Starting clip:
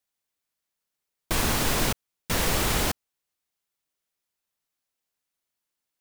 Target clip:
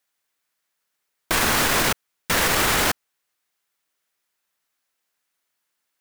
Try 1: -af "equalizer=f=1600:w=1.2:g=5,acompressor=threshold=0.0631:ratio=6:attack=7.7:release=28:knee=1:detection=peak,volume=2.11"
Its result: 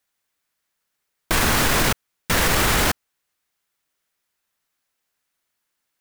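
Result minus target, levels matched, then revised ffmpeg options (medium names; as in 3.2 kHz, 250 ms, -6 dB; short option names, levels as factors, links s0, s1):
125 Hz band +5.5 dB
-af "equalizer=f=1600:w=1.2:g=5,acompressor=threshold=0.0631:ratio=6:attack=7.7:release=28:knee=1:detection=peak,lowshelf=f=170:g=-9,volume=2.11"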